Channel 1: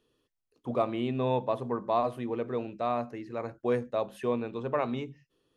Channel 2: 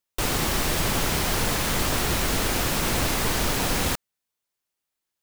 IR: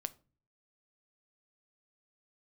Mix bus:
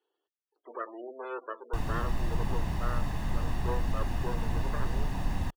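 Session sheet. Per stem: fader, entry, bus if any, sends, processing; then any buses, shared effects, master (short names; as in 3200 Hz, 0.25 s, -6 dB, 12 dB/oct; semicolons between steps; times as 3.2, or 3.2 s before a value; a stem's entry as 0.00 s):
-3.5 dB, 0.00 s, no send, minimum comb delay 0.65 ms; spectral gate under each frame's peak -20 dB strong; elliptic high-pass 360 Hz, stop band 70 dB
-13.5 dB, 1.55 s, no send, tilt -2 dB/oct; comb 1.1 ms, depth 61%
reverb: off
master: high shelf 3000 Hz -8.5 dB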